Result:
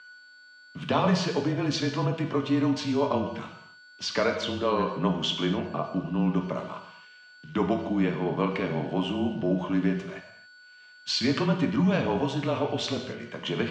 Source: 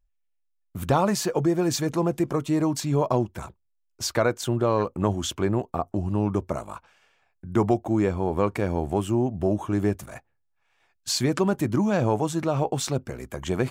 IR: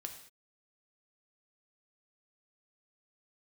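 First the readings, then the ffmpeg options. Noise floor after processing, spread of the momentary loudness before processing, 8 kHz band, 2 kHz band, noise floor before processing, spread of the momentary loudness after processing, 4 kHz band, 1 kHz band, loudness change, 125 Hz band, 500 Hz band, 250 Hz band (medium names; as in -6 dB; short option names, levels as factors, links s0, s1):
-52 dBFS, 10 LU, -10.0 dB, +2.0 dB, -72 dBFS, 10 LU, +3.0 dB, -2.5 dB, -2.0 dB, -3.0 dB, -3.5 dB, -1.5 dB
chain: -filter_complex "[0:a]aeval=exprs='val(0)+0.00708*sin(2*PI*1500*n/s)':c=same,aeval=exprs='val(0)*gte(abs(val(0)),0.00355)':c=same,afreqshift=-25,highpass=f=150:w=0.5412,highpass=f=150:w=1.3066,equalizer=f=320:t=q:w=4:g=-9,equalizer=f=510:t=q:w=4:g=-5,equalizer=f=790:t=q:w=4:g=-8,equalizer=f=1400:t=q:w=4:g=-4,equalizer=f=3000:t=q:w=4:g=7,lowpass=f=4700:w=0.5412,lowpass=f=4700:w=1.3066[s0];[1:a]atrim=start_sample=2205,asetrate=35721,aresample=44100[s1];[s0][s1]afir=irnorm=-1:irlink=0,volume=1.58"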